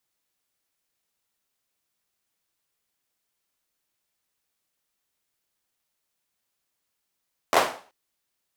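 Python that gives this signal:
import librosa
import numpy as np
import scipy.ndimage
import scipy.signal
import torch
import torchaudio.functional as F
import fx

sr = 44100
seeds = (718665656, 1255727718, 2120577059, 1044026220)

y = fx.drum_clap(sr, seeds[0], length_s=0.38, bursts=4, spacing_ms=12, hz=700.0, decay_s=0.41)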